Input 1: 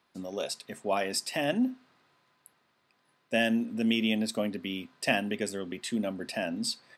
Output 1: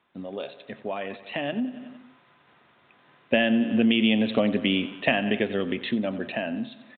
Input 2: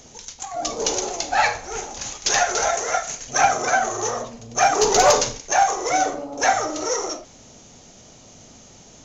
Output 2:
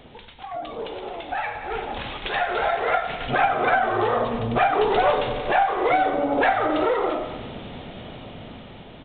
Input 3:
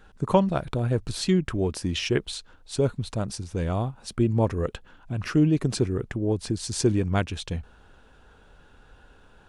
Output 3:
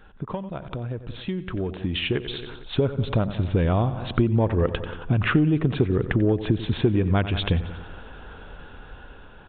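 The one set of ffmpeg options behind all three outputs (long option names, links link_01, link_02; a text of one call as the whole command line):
ffmpeg -i in.wav -filter_complex "[0:a]aecho=1:1:91|182|273|364|455:0.158|0.0888|0.0497|0.0278|0.0156,asplit=2[link_01][link_02];[link_02]aeval=exprs='clip(val(0),-1,0.0891)':channel_layout=same,volume=-10dB[link_03];[link_01][link_03]amix=inputs=2:normalize=0,acompressor=threshold=-29dB:ratio=6,aresample=8000,aresample=44100,dynaudnorm=framelen=620:gausssize=7:maxgain=11.5dB" out.wav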